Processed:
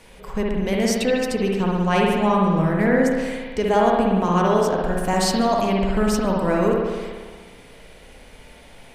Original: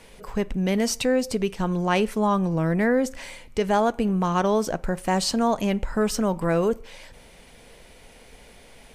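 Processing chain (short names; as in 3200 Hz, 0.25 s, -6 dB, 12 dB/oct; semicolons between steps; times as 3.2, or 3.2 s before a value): 4.97–5.43 high shelf 8900 Hz +7 dB; spring tank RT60 1.5 s, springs 57 ms, chirp 20 ms, DRR -2 dB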